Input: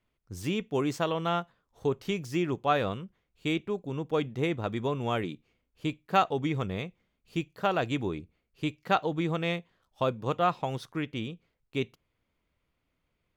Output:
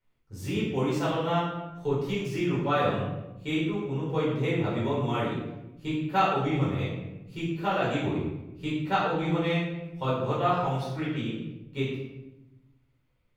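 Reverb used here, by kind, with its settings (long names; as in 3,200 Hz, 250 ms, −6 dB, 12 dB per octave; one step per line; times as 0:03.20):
rectangular room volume 380 cubic metres, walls mixed, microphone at 4.6 metres
level −10 dB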